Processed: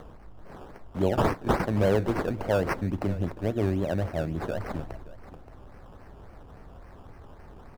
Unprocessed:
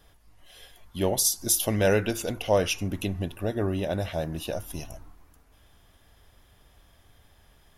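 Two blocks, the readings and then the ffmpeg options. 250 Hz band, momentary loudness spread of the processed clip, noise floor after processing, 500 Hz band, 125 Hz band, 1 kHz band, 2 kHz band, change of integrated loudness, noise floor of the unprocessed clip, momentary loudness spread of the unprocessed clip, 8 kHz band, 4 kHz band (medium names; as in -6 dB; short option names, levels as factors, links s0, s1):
+2.0 dB, 17 LU, -49 dBFS, -0.5 dB, +2.5 dB, +3.5 dB, -1.5 dB, -1.5 dB, -60 dBFS, 12 LU, -22.5 dB, -11.0 dB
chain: -filter_complex "[0:a]acrossover=split=120|1000|2800[s0][s1][s2][s3];[s3]aexciter=amount=2.6:drive=3.7:freq=4400[s4];[s0][s1][s2][s4]amix=inputs=4:normalize=0,acrusher=samples=17:mix=1:aa=0.000001:lfo=1:lforange=10.2:lforate=3.6,highshelf=f=3000:g=-11,aecho=1:1:574:0.106,alimiter=limit=0.211:level=0:latency=1:release=306,acompressor=mode=upward:threshold=0.0126:ratio=2.5,tiltshelf=f=1100:g=3.5,volume=0.841"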